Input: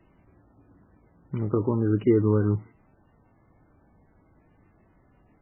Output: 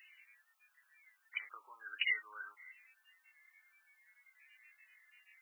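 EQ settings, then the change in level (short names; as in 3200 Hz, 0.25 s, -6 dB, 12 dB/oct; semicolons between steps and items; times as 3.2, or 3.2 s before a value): ladder high-pass 1400 Hz, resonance 55%; tilt +3.5 dB/oct; resonant high shelf 1800 Hz +9 dB, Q 3; +3.5 dB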